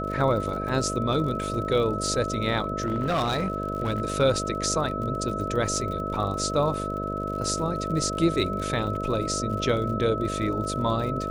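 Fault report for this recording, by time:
buzz 50 Hz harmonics 13 -32 dBFS
crackle 57 per s -34 dBFS
whine 1.3 kHz -31 dBFS
2.80–4.02 s: clipped -21 dBFS

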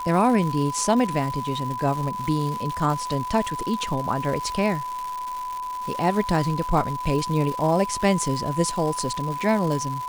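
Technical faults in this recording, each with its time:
crackle 340 per s -29 dBFS
whine 1 kHz -28 dBFS

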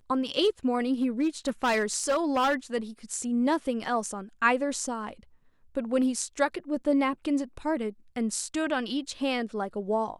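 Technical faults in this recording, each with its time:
1.02–2.55 s: clipped -20.5 dBFS

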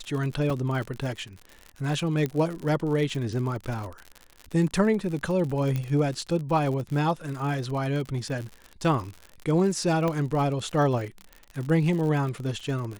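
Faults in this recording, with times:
crackle 69 per s -32 dBFS
0.50 s: dropout 3 ms
2.26 s: pop -16 dBFS
5.76 s: pop -17 dBFS
10.08 s: pop -15 dBFS

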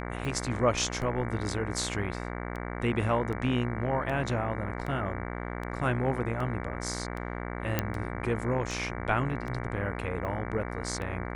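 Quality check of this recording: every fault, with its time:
buzz 60 Hz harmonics 38 -36 dBFS
tick 78 rpm
7.79 s: pop -11 dBFS

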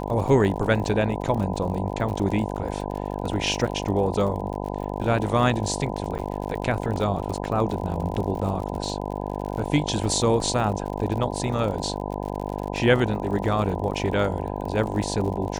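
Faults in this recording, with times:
buzz 50 Hz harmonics 20 -30 dBFS
crackle 52 per s -31 dBFS
6.18–6.19 s: dropout 8.9 ms

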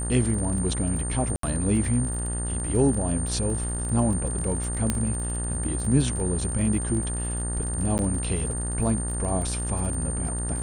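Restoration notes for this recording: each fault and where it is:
buzz 60 Hz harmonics 32 -30 dBFS
crackle 48 per s -32 dBFS
whine 9 kHz -31 dBFS
1.36–1.43 s: dropout 73 ms
4.90 s: pop -9 dBFS
7.98–7.99 s: dropout 9.9 ms

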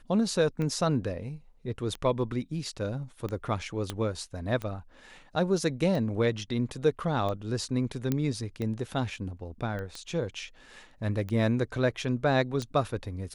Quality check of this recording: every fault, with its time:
tick 45 rpm -22 dBFS
3.90 s: pop -17 dBFS
8.12 s: pop -14 dBFS
9.79 s: pop -26 dBFS

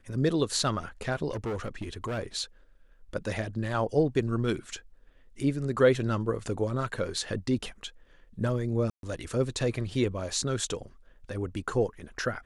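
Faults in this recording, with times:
1.31–2.19 s: clipped -29 dBFS
8.90–9.03 s: dropout 132 ms

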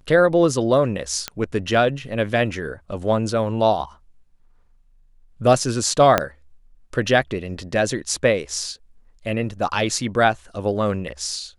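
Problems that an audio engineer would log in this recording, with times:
1.28 s: pop -9 dBFS
6.18 s: pop -2 dBFS

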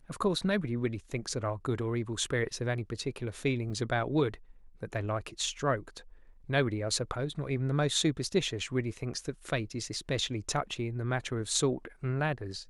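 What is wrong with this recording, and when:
3.70 s: dropout 2.8 ms

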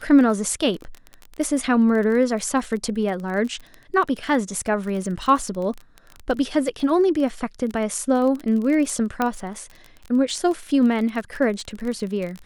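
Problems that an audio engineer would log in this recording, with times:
crackle 23 per s -27 dBFS
9.22 s: pop -9 dBFS

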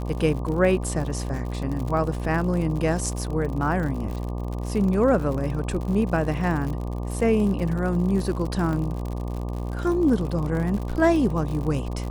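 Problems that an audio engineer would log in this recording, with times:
buzz 60 Hz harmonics 20 -29 dBFS
crackle 74 per s -30 dBFS
8.73 s: dropout 2.2 ms

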